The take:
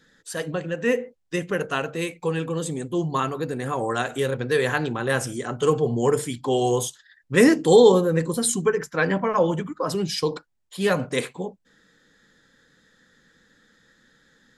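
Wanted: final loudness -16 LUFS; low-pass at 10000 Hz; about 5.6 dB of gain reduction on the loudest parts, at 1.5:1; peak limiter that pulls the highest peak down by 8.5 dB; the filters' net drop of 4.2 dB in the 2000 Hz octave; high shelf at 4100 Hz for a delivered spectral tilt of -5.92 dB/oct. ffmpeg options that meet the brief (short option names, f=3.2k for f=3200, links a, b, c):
-af "lowpass=10k,equalizer=f=2k:t=o:g=-3.5,highshelf=f=4.1k:g=-9,acompressor=threshold=-25dB:ratio=1.5,volume=13.5dB,alimiter=limit=-5dB:level=0:latency=1"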